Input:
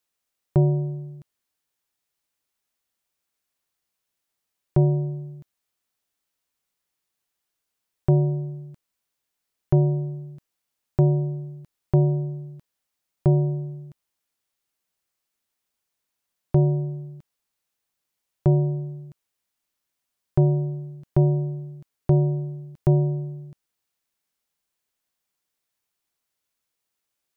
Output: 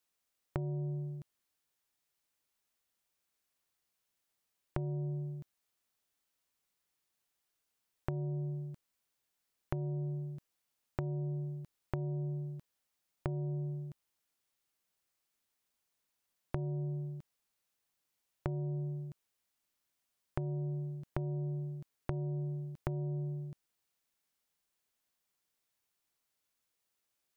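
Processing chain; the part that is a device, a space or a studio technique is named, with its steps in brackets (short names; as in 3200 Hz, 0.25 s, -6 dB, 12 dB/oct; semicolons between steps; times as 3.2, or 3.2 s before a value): serial compression, peaks first (compressor, threshold -25 dBFS, peak gain reduction 11 dB; compressor 3:1, threshold -32 dBFS, peak gain reduction 8 dB); gain -2.5 dB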